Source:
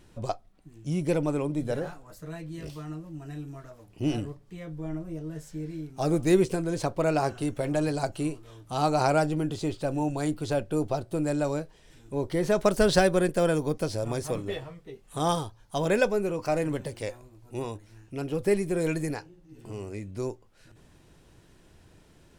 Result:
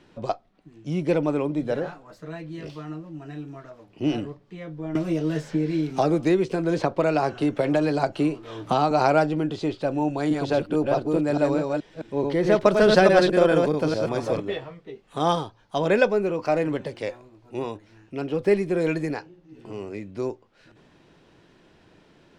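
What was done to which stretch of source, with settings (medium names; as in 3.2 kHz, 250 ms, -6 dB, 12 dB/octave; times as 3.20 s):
4.95–8.91 s: three bands compressed up and down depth 100%
10.09–14.40 s: chunks repeated in reverse 214 ms, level -2.5 dB
whole clip: three-band isolator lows -14 dB, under 150 Hz, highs -20 dB, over 5.2 kHz; trim +4.5 dB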